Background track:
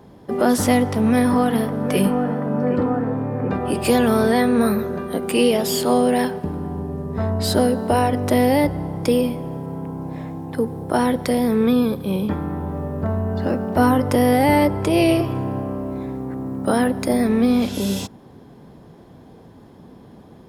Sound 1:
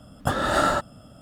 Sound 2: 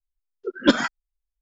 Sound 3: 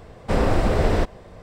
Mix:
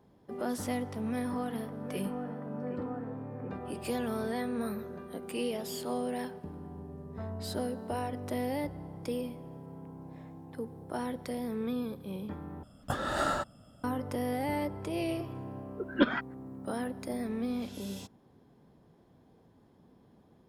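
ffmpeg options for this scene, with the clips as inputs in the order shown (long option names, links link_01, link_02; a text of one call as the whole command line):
ffmpeg -i bed.wav -i cue0.wav -i cue1.wav -filter_complex "[0:a]volume=-17dB[link_01];[2:a]lowpass=frequency=3100:width=0.5412,lowpass=frequency=3100:width=1.3066[link_02];[link_01]asplit=2[link_03][link_04];[link_03]atrim=end=12.634[link_05];[1:a]atrim=end=1.21,asetpts=PTS-STARTPTS,volume=-9dB[link_06];[link_04]atrim=start=13.836[link_07];[link_02]atrim=end=1.41,asetpts=PTS-STARTPTS,volume=-8dB,afade=type=in:duration=0.004:curve=hsin,afade=type=out:start_time=1.406:duration=0.004:curve=hsin,adelay=15330[link_08];[link_05][link_06]acrossfade=duration=0.004:curve1=hsin:curve2=hsin[link_09];[link_09][link_07]acrossfade=duration=0.004:curve1=hsin:curve2=hsin[link_10];[link_10][link_08]amix=inputs=2:normalize=0" out.wav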